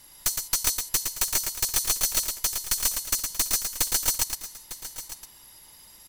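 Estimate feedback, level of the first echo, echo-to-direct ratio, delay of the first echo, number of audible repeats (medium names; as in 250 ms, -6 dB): no regular repeats, -5.5 dB, -4.5 dB, 113 ms, 3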